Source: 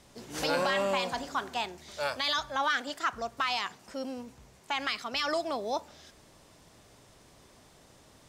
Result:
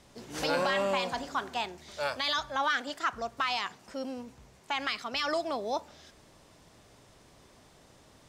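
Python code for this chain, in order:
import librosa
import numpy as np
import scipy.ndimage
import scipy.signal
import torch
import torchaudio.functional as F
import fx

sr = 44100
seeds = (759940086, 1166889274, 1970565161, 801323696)

y = fx.high_shelf(x, sr, hz=7500.0, db=-4.5)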